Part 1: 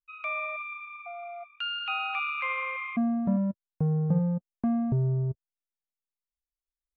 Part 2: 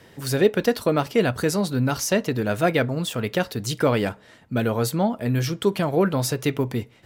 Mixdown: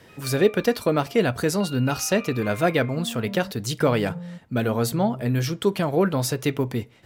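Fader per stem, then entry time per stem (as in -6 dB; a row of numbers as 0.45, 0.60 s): -9.5, -0.5 dB; 0.00, 0.00 s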